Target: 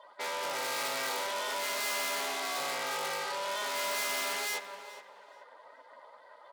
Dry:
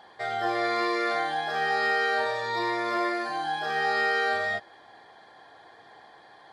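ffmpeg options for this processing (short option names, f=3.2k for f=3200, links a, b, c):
-filter_complex "[0:a]asplit=2[a][b];[b]aecho=0:1:407:0.1[c];[a][c]amix=inputs=2:normalize=0,aeval=exprs='val(0)*sin(2*PI*200*n/s)':c=same,afftdn=nr=16:nf=-51,aeval=exprs='(tanh(89.1*val(0)+0.5)-tanh(0.5))/89.1':c=same,highpass=440,aemphasis=mode=production:type=50kf,bandreject=f=1.7k:w=11,asplit=2[d][e];[e]adelay=425,lowpass=f=4.7k:p=1,volume=-14dB,asplit=2[f][g];[g]adelay=425,lowpass=f=4.7k:p=1,volume=0.29,asplit=2[h][i];[i]adelay=425,lowpass=f=4.7k:p=1,volume=0.29[j];[f][h][j]amix=inputs=3:normalize=0[k];[d][k]amix=inputs=2:normalize=0,volume=6.5dB"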